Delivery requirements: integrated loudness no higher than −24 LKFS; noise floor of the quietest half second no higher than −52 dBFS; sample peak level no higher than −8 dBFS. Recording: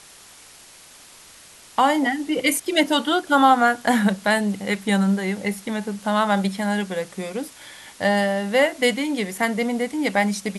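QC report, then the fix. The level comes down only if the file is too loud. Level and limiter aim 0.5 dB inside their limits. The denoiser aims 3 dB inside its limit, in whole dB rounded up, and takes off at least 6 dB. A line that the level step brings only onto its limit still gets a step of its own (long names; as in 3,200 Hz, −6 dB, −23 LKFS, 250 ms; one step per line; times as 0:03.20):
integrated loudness −21.5 LKFS: out of spec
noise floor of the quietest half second −47 dBFS: out of spec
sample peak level −4.0 dBFS: out of spec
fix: broadband denoise 6 dB, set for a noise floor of −47 dBFS
level −3 dB
brickwall limiter −8.5 dBFS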